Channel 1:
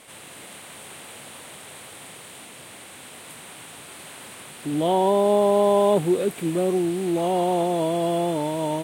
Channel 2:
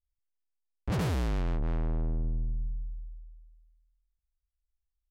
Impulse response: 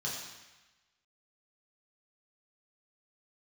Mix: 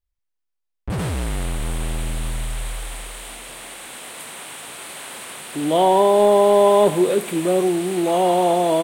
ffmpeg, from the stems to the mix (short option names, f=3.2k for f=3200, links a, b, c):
-filter_complex "[0:a]lowshelf=f=360:g=-9,adelay=900,volume=1.5dB,asplit=2[a][b];[b]volume=-15.5dB[c];[1:a]bass=f=250:g=0,treble=f=4k:g=-4,volume=-1dB[d];[2:a]atrim=start_sample=2205[e];[c][e]afir=irnorm=-1:irlink=0[f];[a][d][f]amix=inputs=3:normalize=0,acontrast=45"